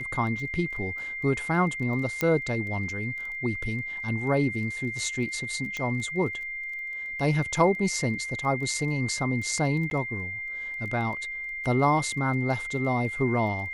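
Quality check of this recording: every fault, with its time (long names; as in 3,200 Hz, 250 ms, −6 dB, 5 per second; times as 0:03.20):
surface crackle 14 per second −36 dBFS
whistle 2,100 Hz −32 dBFS
0:02.21: click −11 dBFS
0:05.77: click −19 dBFS
0:09.90–0:09.91: drop-out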